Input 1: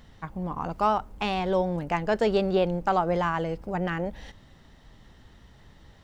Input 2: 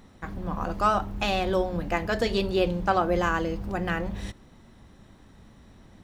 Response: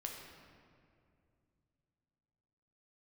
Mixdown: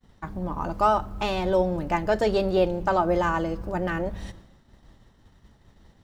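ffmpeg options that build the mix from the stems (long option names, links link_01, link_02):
-filter_complex "[0:a]volume=1.5dB[link_01];[1:a]volume=-6dB,asplit=2[link_02][link_03];[link_03]volume=-10.5dB[link_04];[2:a]atrim=start_sample=2205[link_05];[link_04][link_05]afir=irnorm=-1:irlink=0[link_06];[link_01][link_02][link_06]amix=inputs=3:normalize=0,agate=range=-33dB:threshold=-43dB:ratio=3:detection=peak,equalizer=frequency=2500:width_type=o:width=1.4:gain=-4"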